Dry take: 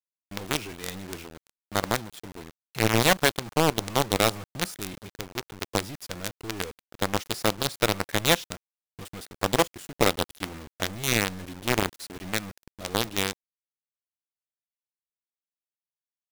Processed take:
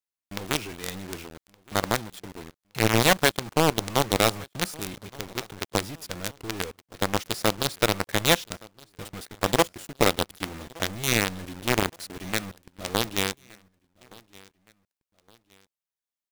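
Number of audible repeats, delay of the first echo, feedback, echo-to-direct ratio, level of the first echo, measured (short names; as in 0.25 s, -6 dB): 2, 1.168 s, 39%, -23.5 dB, -24.0 dB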